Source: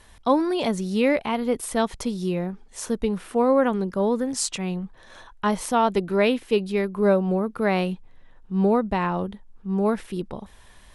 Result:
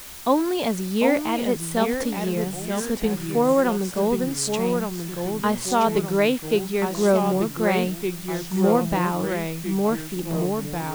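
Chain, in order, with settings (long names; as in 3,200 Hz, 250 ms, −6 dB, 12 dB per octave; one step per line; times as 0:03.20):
delay with pitch and tempo change per echo 717 ms, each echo −2 semitones, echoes 3, each echo −6 dB
background noise white −40 dBFS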